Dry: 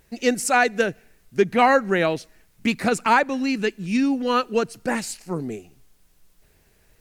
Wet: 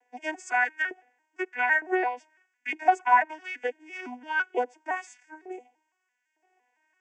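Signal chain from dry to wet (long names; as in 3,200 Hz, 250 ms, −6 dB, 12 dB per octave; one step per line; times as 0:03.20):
vocoder with an arpeggio as carrier major triad, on B3, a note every 169 ms
auto-filter high-pass saw up 1.1 Hz 620–1,800 Hz
phaser with its sweep stopped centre 820 Hz, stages 8
level +1.5 dB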